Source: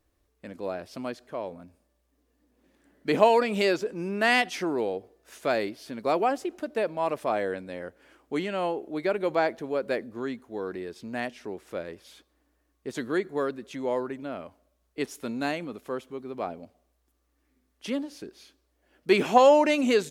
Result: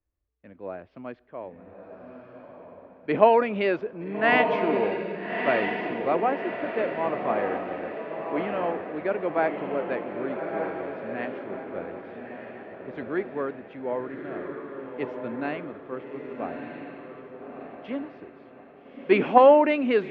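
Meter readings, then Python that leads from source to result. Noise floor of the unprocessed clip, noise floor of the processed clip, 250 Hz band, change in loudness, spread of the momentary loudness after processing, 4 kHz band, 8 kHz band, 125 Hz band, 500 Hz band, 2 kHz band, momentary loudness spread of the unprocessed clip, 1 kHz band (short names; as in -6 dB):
-73 dBFS, -51 dBFS, +1.0 dB, +2.0 dB, 21 LU, -6.0 dB, under -30 dB, +0.5 dB, +2.0 dB, +1.5 dB, 18 LU, +2.5 dB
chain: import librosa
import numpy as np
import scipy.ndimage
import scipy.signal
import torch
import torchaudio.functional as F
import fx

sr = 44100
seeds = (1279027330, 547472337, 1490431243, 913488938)

y = scipy.signal.sosfilt(scipy.signal.butter(4, 2600.0, 'lowpass', fs=sr, output='sos'), x)
y = fx.echo_diffused(y, sr, ms=1250, feedback_pct=49, wet_db=-3)
y = fx.band_widen(y, sr, depth_pct=40)
y = y * 10.0 ** (-1.0 / 20.0)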